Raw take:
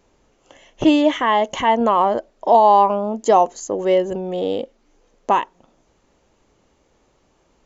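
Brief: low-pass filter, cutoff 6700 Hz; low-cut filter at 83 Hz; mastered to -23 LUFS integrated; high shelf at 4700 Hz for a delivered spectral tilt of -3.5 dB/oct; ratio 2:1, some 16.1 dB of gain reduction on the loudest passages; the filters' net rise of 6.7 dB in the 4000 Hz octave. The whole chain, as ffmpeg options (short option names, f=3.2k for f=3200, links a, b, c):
-af "highpass=83,lowpass=6.7k,equalizer=f=4k:t=o:g=6,highshelf=f=4.7k:g=9,acompressor=threshold=-39dB:ratio=2,volume=8.5dB"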